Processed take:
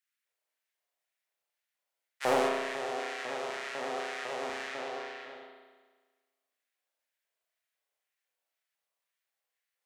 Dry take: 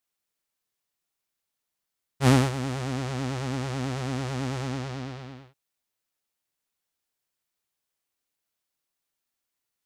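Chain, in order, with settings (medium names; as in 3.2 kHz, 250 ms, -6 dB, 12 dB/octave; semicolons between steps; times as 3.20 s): LFO high-pass square 2 Hz 570–1800 Hz; overload inside the chain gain 11.5 dB; spring tank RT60 1.4 s, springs 34 ms, chirp 35 ms, DRR -1.5 dB; trim -6 dB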